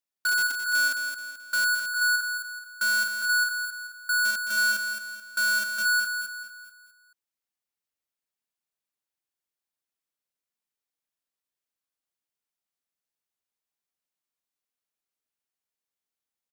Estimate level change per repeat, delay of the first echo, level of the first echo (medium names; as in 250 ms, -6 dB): -7.5 dB, 216 ms, -7.5 dB